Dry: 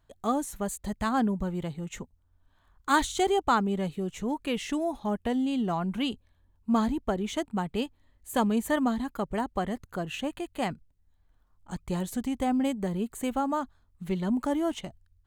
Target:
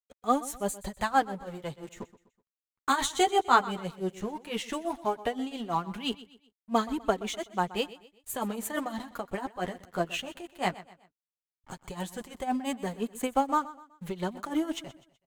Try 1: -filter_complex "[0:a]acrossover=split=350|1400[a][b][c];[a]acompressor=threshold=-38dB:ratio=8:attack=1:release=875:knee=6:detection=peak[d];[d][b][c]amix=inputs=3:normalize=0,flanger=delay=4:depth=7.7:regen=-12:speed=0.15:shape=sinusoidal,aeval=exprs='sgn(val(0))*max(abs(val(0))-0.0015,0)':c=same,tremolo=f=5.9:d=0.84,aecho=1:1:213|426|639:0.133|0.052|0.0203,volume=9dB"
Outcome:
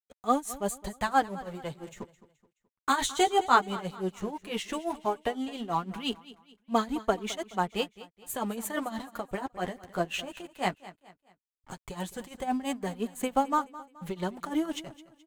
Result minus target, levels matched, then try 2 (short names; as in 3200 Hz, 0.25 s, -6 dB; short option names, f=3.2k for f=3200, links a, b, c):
echo 88 ms late
-filter_complex "[0:a]acrossover=split=350|1400[a][b][c];[a]acompressor=threshold=-38dB:ratio=8:attack=1:release=875:knee=6:detection=peak[d];[d][b][c]amix=inputs=3:normalize=0,flanger=delay=4:depth=7.7:regen=-12:speed=0.15:shape=sinusoidal,aeval=exprs='sgn(val(0))*max(abs(val(0))-0.0015,0)':c=same,tremolo=f=5.9:d=0.84,aecho=1:1:125|250|375:0.133|0.052|0.0203,volume=9dB"